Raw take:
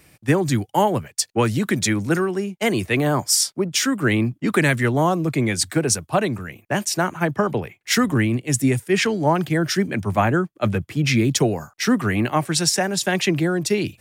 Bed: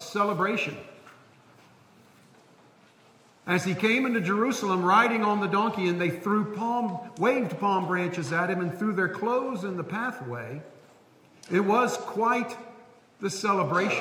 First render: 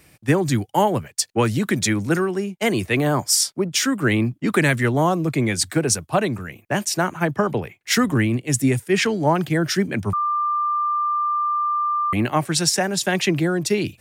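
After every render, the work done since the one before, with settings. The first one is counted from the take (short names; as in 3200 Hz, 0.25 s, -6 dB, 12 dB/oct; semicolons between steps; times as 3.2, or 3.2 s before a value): 10.13–12.13 bleep 1190 Hz -18.5 dBFS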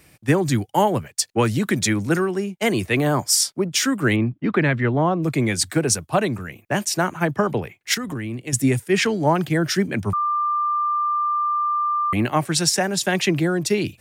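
4.16–5.23 air absorption 300 m; 7.94–8.53 compressor, threshold -25 dBFS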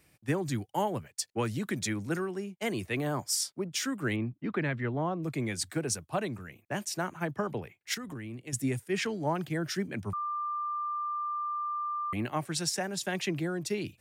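gain -12 dB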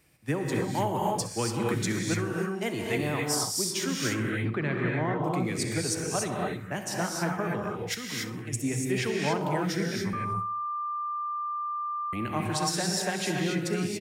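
feedback echo 65 ms, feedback 41%, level -15.5 dB; non-linear reverb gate 0.31 s rising, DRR -1.5 dB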